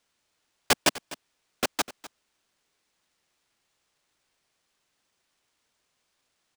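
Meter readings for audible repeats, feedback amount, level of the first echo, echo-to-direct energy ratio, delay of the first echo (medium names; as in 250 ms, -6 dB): 1, no regular repeats, -17.5 dB, -17.5 dB, 251 ms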